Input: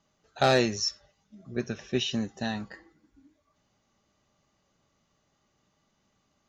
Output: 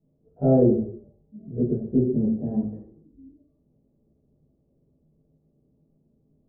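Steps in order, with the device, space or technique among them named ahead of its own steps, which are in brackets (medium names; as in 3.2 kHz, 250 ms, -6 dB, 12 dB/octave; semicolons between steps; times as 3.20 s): next room (low-pass 450 Hz 24 dB/octave; reverberation RT60 0.55 s, pre-delay 12 ms, DRR -10 dB)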